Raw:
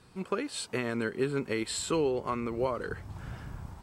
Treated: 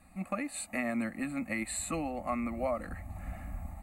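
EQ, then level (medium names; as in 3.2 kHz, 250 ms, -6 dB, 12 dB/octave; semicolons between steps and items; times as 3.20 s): static phaser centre 650 Hz, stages 8; static phaser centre 1.5 kHz, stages 6; +7.0 dB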